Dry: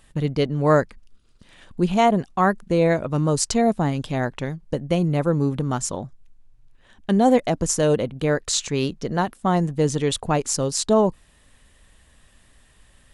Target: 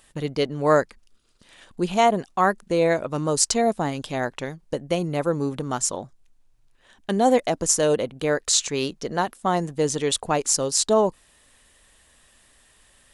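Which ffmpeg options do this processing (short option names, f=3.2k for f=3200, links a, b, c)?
-af "bass=f=250:g=-9,treble=f=4k:g=4"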